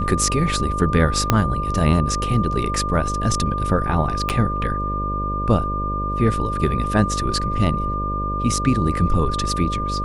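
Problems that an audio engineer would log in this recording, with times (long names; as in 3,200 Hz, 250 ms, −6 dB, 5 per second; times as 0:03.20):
mains buzz 50 Hz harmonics 12 −26 dBFS
whistle 1,200 Hz −24 dBFS
0:01.30: click −1 dBFS
0:04.29–0:04.30: drop-out 7 ms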